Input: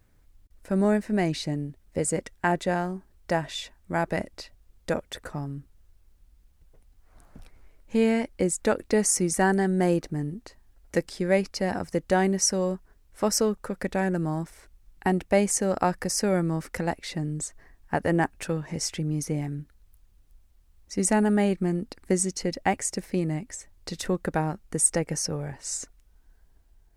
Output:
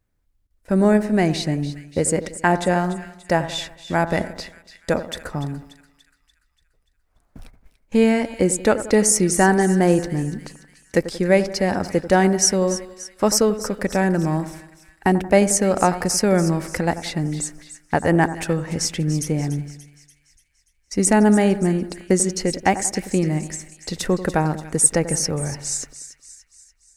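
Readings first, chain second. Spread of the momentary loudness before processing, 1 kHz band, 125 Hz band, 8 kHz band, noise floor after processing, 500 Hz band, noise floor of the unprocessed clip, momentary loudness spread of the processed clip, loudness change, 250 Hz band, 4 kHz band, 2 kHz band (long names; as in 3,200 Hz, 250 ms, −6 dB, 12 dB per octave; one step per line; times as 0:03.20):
12 LU, +7.0 dB, +7.0 dB, +7.0 dB, −65 dBFS, +6.5 dB, −61 dBFS, 13 LU, +6.5 dB, +7.0 dB, +7.0 dB, +7.0 dB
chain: noise gate −47 dBFS, range −17 dB
echo with a time of its own for lows and highs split 1,700 Hz, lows 90 ms, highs 290 ms, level −13 dB
level +6.5 dB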